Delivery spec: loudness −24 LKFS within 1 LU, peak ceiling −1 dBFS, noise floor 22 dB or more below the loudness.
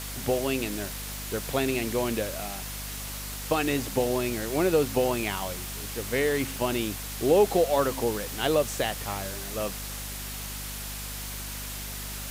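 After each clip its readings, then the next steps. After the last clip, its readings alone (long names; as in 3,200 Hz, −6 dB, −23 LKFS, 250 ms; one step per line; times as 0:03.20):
mains hum 50 Hz; hum harmonics up to 250 Hz; level of the hum −37 dBFS; background noise floor −36 dBFS; target noise floor −51 dBFS; integrated loudness −28.5 LKFS; sample peak −10.0 dBFS; target loudness −24.0 LKFS
→ mains-hum notches 50/100/150/200/250 Hz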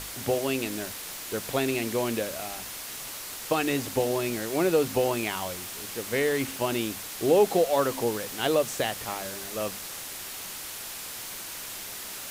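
mains hum none found; background noise floor −39 dBFS; target noise floor −51 dBFS
→ noise reduction from a noise print 12 dB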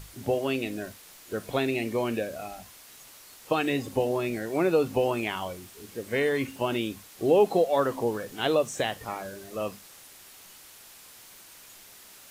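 background noise floor −51 dBFS; integrated loudness −28.0 LKFS; sample peak −10.0 dBFS; target loudness −24.0 LKFS
→ level +4 dB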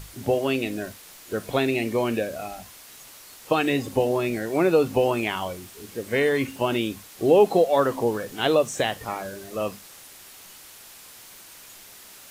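integrated loudness −24.0 LKFS; sample peak −6.0 dBFS; background noise floor −47 dBFS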